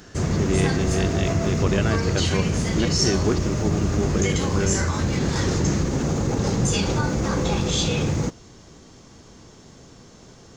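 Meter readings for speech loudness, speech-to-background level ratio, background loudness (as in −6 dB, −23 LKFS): −27.0 LKFS, −4.0 dB, −23.0 LKFS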